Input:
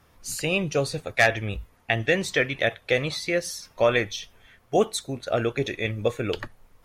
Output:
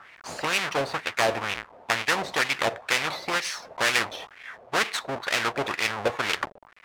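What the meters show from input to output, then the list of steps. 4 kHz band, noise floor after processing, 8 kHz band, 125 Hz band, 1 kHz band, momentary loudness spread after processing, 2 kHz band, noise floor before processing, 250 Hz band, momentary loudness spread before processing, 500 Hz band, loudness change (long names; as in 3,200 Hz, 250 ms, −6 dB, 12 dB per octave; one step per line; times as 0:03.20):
+3.5 dB, −53 dBFS, +1.0 dB, −11.0 dB, +4.0 dB, 9 LU, +1.0 dB, −60 dBFS, −7.0 dB, 12 LU, −6.0 dB, −1.0 dB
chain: each half-wave held at its own peak
LFO wah 2.1 Hz 580–2,300 Hz, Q 3.5
every bin compressed towards the loudest bin 2 to 1
level +4 dB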